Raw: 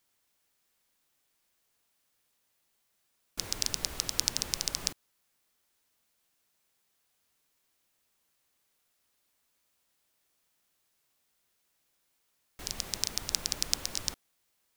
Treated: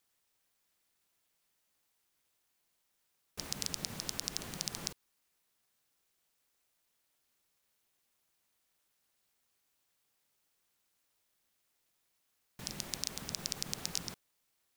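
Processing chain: ring modulator 170 Hz; limiter -12 dBFS, peak gain reduction 10 dB

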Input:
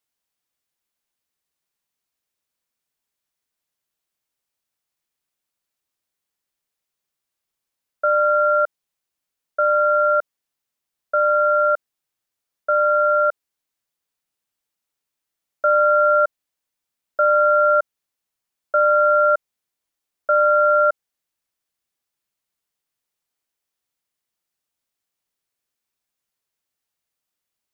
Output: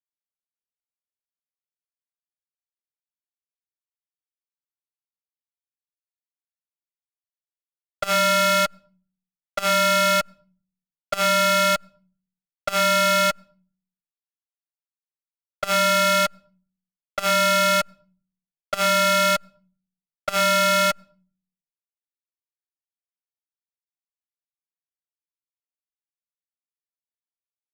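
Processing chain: per-bin compression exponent 0.6; fuzz box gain 42 dB, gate -47 dBFS; on a send at -19.5 dB: reverb RT60 0.40 s, pre-delay 6 ms; on the sum: compressor 3:1, threshold -18 dBFS, peak gain reduction 3.5 dB; core saturation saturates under 510 Hz

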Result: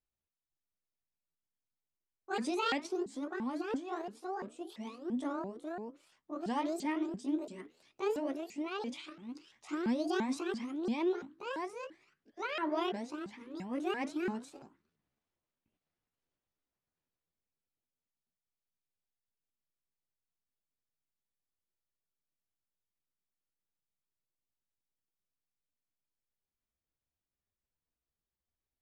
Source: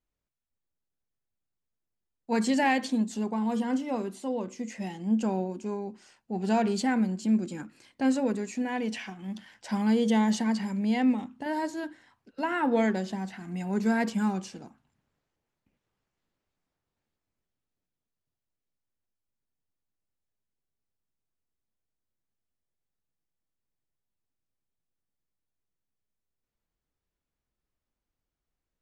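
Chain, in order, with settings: repeated pitch sweeps +10.5 st, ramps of 0.34 s; LPF 7600 Hz 12 dB/oct; gain -7.5 dB

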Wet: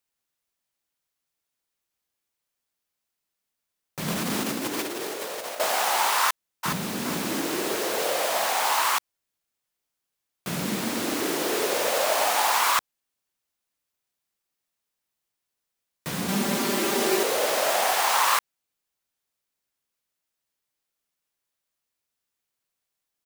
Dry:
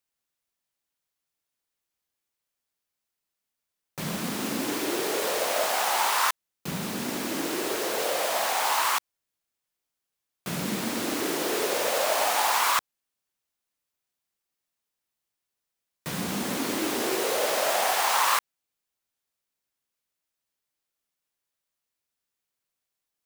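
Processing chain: 4.08–5.6 negative-ratio compressor -31 dBFS, ratio -0.5; 6.21–6.97 echo throw 0.42 s, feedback 35%, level -6 dB; 16.28–17.23 comb 5.1 ms, depth 88%; gain +1.5 dB

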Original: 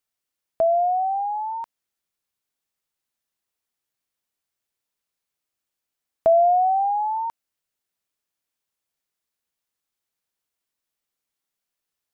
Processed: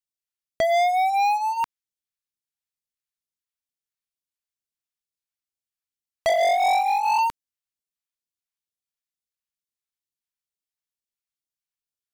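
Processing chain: 6.29–7.19 sine-wave speech; phaser stages 2, 2.2 Hz, lowest notch 350–1200 Hz; sample leveller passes 5

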